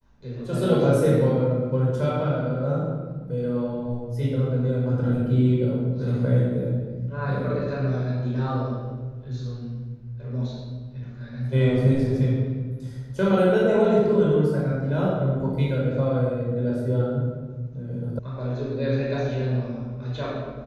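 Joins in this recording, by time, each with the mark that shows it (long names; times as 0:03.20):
0:18.19: cut off before it has died away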